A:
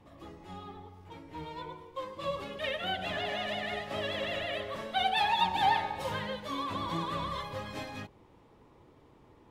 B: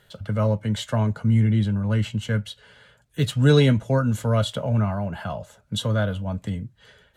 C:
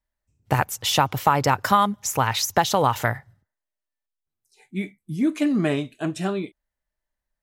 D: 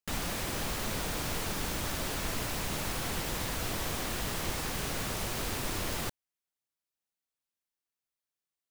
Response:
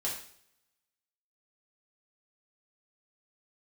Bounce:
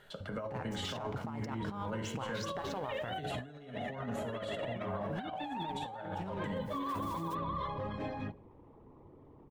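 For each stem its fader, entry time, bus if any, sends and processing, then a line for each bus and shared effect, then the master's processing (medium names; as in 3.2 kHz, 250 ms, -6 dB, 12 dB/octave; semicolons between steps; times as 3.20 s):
0.0 dB, 0.25 s, bus A, send -23.5 dB, resonances exaggerated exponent 1.5; hum notches 60/120/180/240/300/360/420/480/540 Hz
-1.0 dB, 0.00 s, bus B, send -11 dB, peaking EQ 84 Hz -12 dB 2.2 oct
-6.5 dB, 0.00 s, bus A, send -16 dB, low-pass 6.4 kHz 12 dB/octave; compression 2.5:1, threshold -26 dBFS, peak gain reduction 9.5 dB; crossover distortion -40 dBFS
+1.0 dB, 1.25 s, bus B, no send, spectral gate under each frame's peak -25 dB weak; auto duck -20 dB, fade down 1.90 s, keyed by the third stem
bus A: 0.0 dB, peak limiter -24.5 dBFS, peak gain reduction 9.5 dB
bus B: 0.0 dB, band-stop 490 Hz, Q 12; compression 2:1, threshold -45 dBFS, peak gain reduction 15 dB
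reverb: on, RT60 0.65 s, pre-delay 3 ms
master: treble shelf 2.8 kHz -11.5 dB; compressor with a negative ratio -35 dBFS, ratio -0.5; peak limiter -29 dBFS, peak gain reduction 8.5 dB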